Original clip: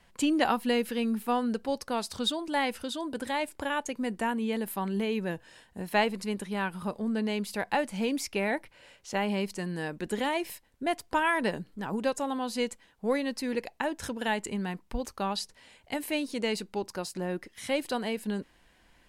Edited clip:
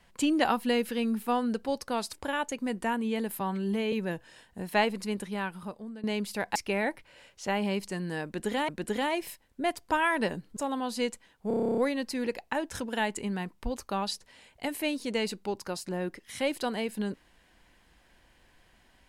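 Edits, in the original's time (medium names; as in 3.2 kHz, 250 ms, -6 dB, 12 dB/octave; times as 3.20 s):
2.13–3.50 s: delete
4.77–5.12 s: stretch 1.5×
6.41–7.23 s: fade out, to -17 dB
7.75–8.22 s: delete
9.91–10.35 s: loop, 2 plays
11.79–12.15 s: delete
13.06 s: stutter 0.03 s, 11 plays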